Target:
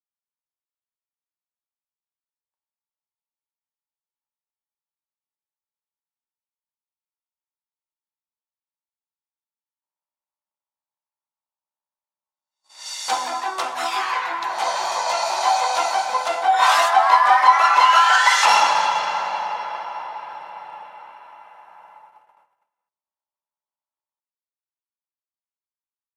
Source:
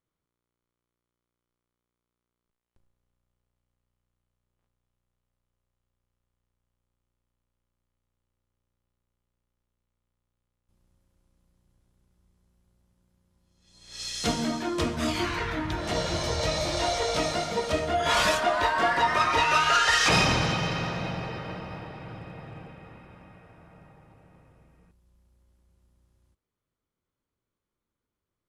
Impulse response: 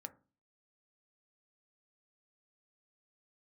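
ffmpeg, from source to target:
-filter_complex "[0:a]agate=range=-26dB:threshold=-54dB:ratio=16:detection=peak,acontrast=69,highpass=frequency=810:width_type=q:width=4.7,asplit=2[link_01][link_02];[1:a]atrim=start_sample=2205[link_03];[link_02][link_03]afir=irnorm=-1:irlink=0,volume=9.5dB[link_04];[link_01][link_04]amix=inputs=2:normalize=0,asetrate=48000,aresample=44100,volume=-11.5dB"

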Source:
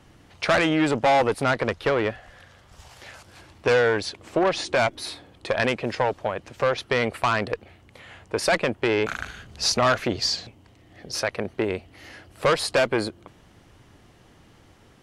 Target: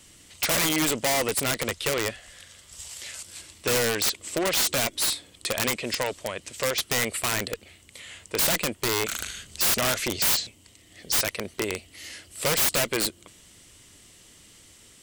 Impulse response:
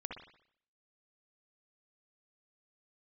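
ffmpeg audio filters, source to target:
-af "equalizer=frequency=125:width_type=o:width=0.33:gain=-5,equalizer=frequency=800:width_type=o:width=0.33:gain=-7,equalizer=frequency=2000:width_type=o:width=0.33:gain=8,equalizer=frequency=8000:width_type=o:width=0.33:gain=10,aexciter=amount=3.9:drive=6.2:freq=2700,aeval=exprs='(mod(3.98*val(0)+1,2)-1)/3.98':channel_layout=same,volume=-4.5dB"

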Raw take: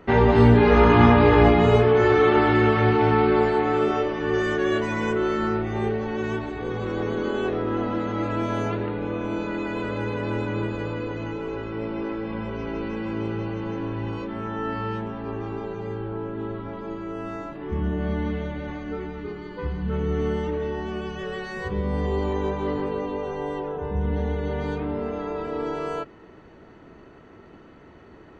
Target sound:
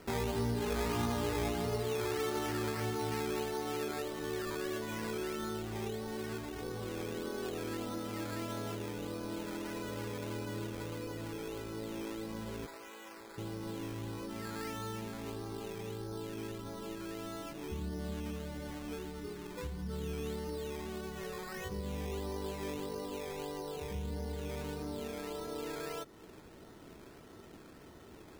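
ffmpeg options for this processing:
ffmpeg -i in.wav -filter_complex "[0:a]acompressor=threshold=-37dB:ratio=2,asettb=1/sr,asplit=3[link_01][link_02][link_03];[link_01]atrim=end=12.664[link_04];[link_02]atrim=start=12.66:end=13.38,asetpts=PTS-STARTPTS,afade=type=in:duration=0.004:curve=qsin,afade=type=out:start_time=0.716:duration=0.004:curve=qsin,highpass=710[link_05];[link_03]atrim=start=13.376[link_06];[link_04][link_05]acrossfade=duration=0.004:curve1=hsin:curve2=qsin[link_07];[link_07][link_06]acrossfade=duration=0.004:curve1=qsin:curve2=hsin,acrusher=samples=12:mix=1:aa=0.000001:lfo=1:lforange=7.2:lforate=1.6,volume=-5.5dB" out.wav

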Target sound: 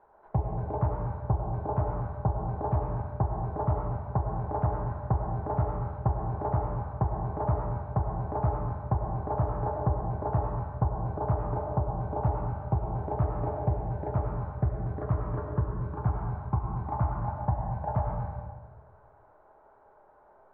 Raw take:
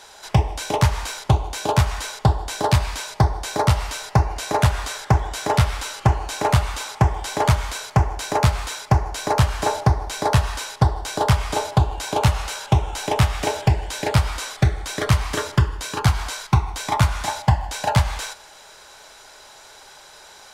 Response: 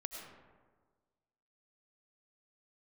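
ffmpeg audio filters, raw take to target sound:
-filter_complex "[0:a]lowpass=frequency=1100:width=0.5412,lowpass=frequency=1100:width=1.3066[link_01];[1:a]atrim=start_sample=2205[link_02];[link_01][link_02]afir=irnorm=-1:irlink=0,volume=-7dB"

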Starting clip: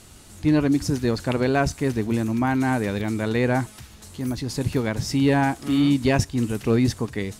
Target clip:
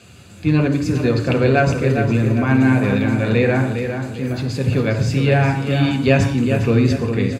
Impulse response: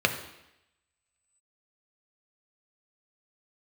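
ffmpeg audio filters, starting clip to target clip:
-filter_complex "[0:a]asplit=2[link_01][link_02];[link_02]adelay=406,lowpass=frequency=3800:poles=1,volume=-7dB,asplit=2[link_03][link_04];[link_04]adelay=406,lowpass=frequency=3800:poles=1,volume=0.42,asplit=2[link_05][link_06];[link_06]adelay=406,lowpass=frequency=3800:poles=1,volume=0.42,asplit=2[link_07][link_08];[link_08]adelay=406,lowpass=frequency=3800:poles=1,volume=0.42,asplit=2[link_09][link_10];[link_10]adelay=406,lowpass=frequency=3800:poles=1,volume=0.42[link_11];[link_01][link_03][link_05][link_07][link_09][link_11]amix=inputs=6:normalize=0[link_12];[1:a]atrim=start_sample=2205,afade=type=out:start_time=0.23:duration=0.01,atrim=end_sample=10584[link_13];[link_12][link_13]afir=irnorm=-1:irlink=0,volume=-8dB"

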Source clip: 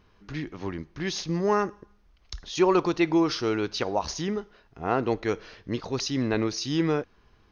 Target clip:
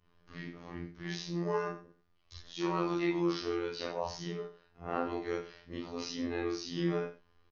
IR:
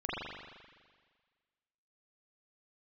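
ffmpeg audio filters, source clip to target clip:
-filter_complex "[1:a]atrim=start_sample=2205,atrim=end_sample=6174,asetrate=70560,aresample=44100[link_01];[0:a][link_01]afir=irnorm=-1:irlink=0,afftfilt=real='hypot(re,im)*cos(PI*b)':imag='0':win_size=2048:overlap=0.75,aecho=1:1:88:0.224,volume=-6dB"

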